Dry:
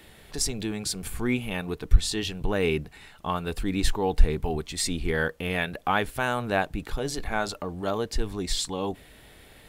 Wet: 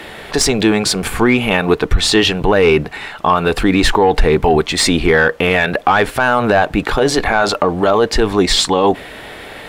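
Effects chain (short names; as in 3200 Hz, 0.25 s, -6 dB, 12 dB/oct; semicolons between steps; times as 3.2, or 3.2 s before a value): overdrive pedal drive 18 dB, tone 1400 Hz, clips at -4.5 dBFS; maximiser +15.5 dB; gain -1.5 dB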